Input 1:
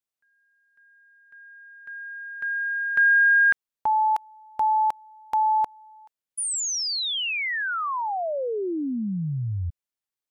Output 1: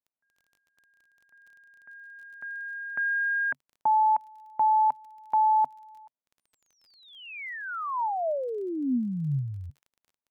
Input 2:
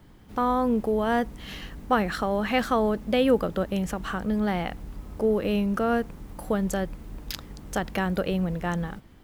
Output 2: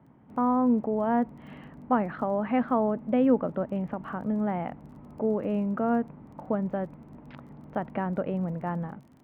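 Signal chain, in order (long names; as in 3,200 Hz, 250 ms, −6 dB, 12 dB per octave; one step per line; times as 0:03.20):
loudspeaker in its box 110–2,100 Hz, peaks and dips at 140 Hz +9 dB, 250 Hz +9 dB, 630 Hz +6 dB, 920 Hz +6 dB, 1,700 Hz −4 dB
surface crackle 27 per second −42 dBFS
level −6 dB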